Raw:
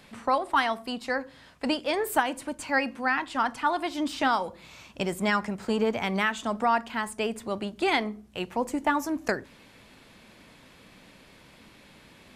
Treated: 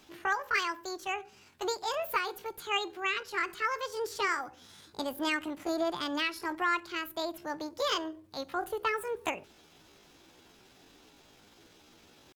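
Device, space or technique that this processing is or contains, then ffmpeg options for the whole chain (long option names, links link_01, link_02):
chipmunk voice: -af "asetrate=66075,aresample=44100,atempo=0.66742,volume=-5.5dB"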